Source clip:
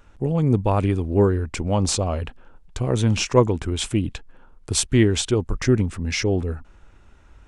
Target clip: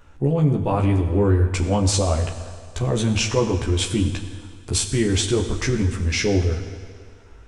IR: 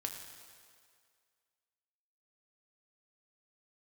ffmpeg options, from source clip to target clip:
-filter_complex "[0:a]alimiter=limit=-13.5dB:level=0:latency=1:release=34,asplit=2[link_01][link_02];[1:a]atrim=start_sample=2205,adelay=14[link_03];[link_02][link_03]afir=irnorm=-1:irlink=0,volume=0dB[link_04];[link_01][link_04]amix=inputs=2:normalize=0"

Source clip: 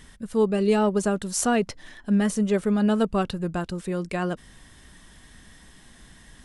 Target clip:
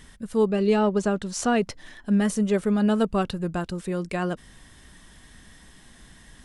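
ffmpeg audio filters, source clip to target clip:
ffmpeg -i in.wav -filter_complex "[0:a]asettb=1/sr,asplit=3[link_01][link_02][link_03];[link_01]atrim=end=0.504[link_04];[link_02]atrim=start=0.5:end=1.56,asetpts=PTS-STARTPTS,afade=type=in:duration=0.004:curve=qsin,afade=type=out:start_time=1.056:duration=0.004:curve=qsin,lowpass=6200[link_05];[link_03]atrim=start=1.556[link_06];[link_04][link_05]acrossfade=duration=0.004:curve1=hsin:curve2=qsin[link_07];[link_07][link_06]acrossfade=duration=0.004:curve1=qsin:curve2=hsin" out.wav

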